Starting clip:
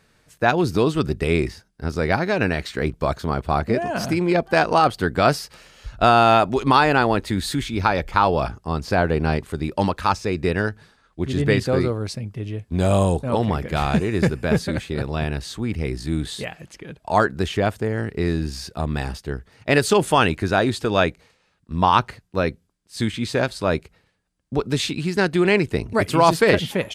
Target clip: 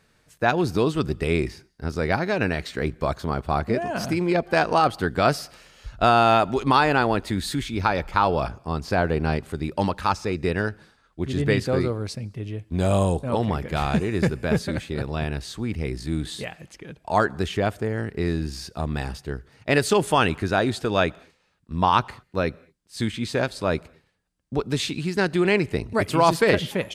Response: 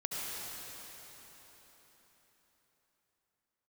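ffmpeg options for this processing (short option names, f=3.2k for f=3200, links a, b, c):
-filter_complex "[0:a]asplit=2[a][b];[1:a]atrim=start_sample=2205,afade=t=out:st=0.28:d=0.01,atrim=end_sample=12789[c];[b][c]afir=irnorm=-1:irlink=0,volume=-26dB[d];[a][d]amix=inputs=2:normalize=0,volume=-3dB"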